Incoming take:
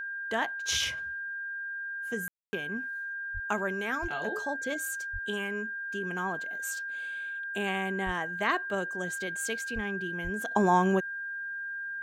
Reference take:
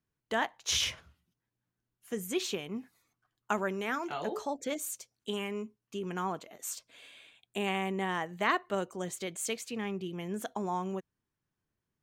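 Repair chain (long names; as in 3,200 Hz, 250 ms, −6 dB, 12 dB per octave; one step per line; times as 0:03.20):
notch filter 1,600 Hz, Q 30
high-pass at the plosives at 0:02.38/0:03.33/0:04.01/0:05.12/0:08.05/0:09.74/0:10.23
ambience match 0:02.28–0:02.53
level correction −10.5 dB, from 0:10.51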